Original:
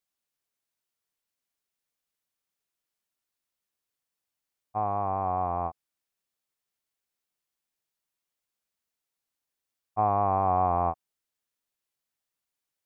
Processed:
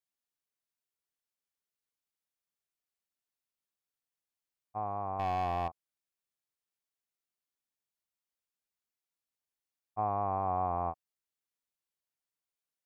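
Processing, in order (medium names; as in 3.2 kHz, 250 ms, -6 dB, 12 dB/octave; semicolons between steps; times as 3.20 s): 5.19–5.68 s: waveshaping leveller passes 2; trim -7.5 dB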